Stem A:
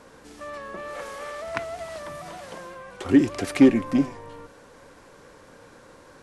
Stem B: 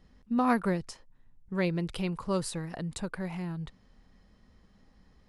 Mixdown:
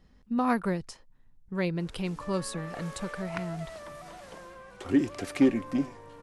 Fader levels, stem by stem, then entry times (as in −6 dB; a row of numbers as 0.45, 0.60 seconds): −7.0, −0.5 decibels; 1.80, 0.00 seconds